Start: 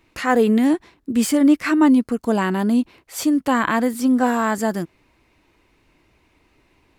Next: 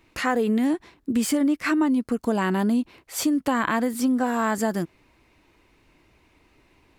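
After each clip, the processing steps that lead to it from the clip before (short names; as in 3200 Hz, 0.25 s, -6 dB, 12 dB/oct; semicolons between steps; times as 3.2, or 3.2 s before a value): compressor 6:1, threshold -19 dBFS, peak gain reduction 9 dB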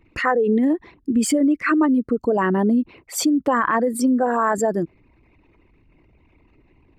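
formant sharpening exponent 2; gain +4 dB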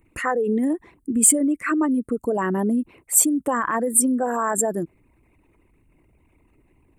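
resonant high shelf 6600 Hz +12.5 dB, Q 3; gain -3.5 dB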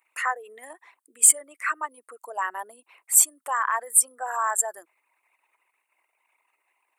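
HPF 810 Hz 24 dB/oct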